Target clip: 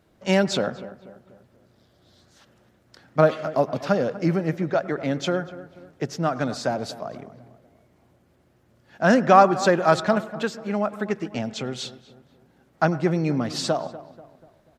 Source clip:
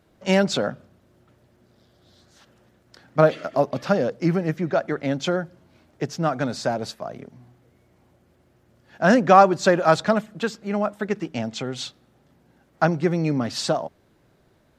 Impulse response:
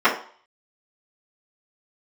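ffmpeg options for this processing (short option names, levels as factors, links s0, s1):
-filter_complex "[0:a]asplit=2[s0][s1];[s1]adelay=243,lowpass=f=1900:p=1,volume=0.168,asplit=2[s2][s3];[s3]adelay=243,lowpass=f=1900:p=1,volume=0.46,asplit=2[s4][s5];[s5]adelay=243,lowpass=f=1900:p=1,volume=0.46,asplit=2[s6][s7];[s7]adelay=243,lowpass=f=1900:p=1,volume=0.46[s8];[s0][s2][s4][s6][s8]amix=inputs=5:normalize=0,asplit=2[s9][s10];[1:a]atrim=start_sample=2205,adelay=94[s11];[s10][s11]afir=irnorm=-1:irlink=0,volume=0.0106[s12];[s9][s12]amix=inputs=2:normalize=0,volume=0.891"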